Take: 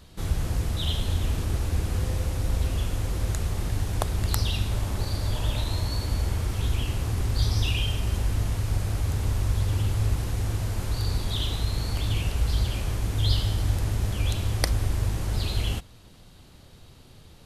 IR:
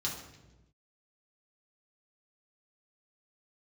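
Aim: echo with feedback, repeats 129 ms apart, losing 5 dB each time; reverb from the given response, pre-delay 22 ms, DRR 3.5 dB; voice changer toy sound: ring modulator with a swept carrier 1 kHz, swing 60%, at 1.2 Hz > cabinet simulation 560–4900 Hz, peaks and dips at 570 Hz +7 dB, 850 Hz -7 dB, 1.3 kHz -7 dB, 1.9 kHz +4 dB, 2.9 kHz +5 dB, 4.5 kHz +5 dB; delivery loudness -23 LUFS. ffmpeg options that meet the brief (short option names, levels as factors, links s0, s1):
-filter_complex "[0:a]aecho=1:1:129|258|387|516|645|774|903:0.562|0.315|0.176|0.0988|0.0553|0.031|0.0173,asplit=2[s0][s1];[1:a]atrim=start_sample=2205,adelay=22[s2];[s1][s2]afir=irnorm=-1:irlink=0,volume=0.447[s3];[s0][s3]amix=inputs=2:normalize=0,aeval=exprs='val(0)*sin(2*PI*1000*n/s+1000*0.6/1.2*sin(2*PI*1.2*n/s))':c=same,highpass=560,equalizer=f=570:t=q:w=4:g=7,equalizer=f=850:t=q:w=4:g=-7,equalizer=f=1300:t=q:w=4:g=-7,equalizer=f=1900:t=q:w=4:g=4,equalizer=f=2900:t=q:w=4:g=5,equalizer=f=4500:t=q:w=4:g=5,lowpass=f=4900:w=0.5412,lowpass=f=4900:w=1.3066,volume=1.33"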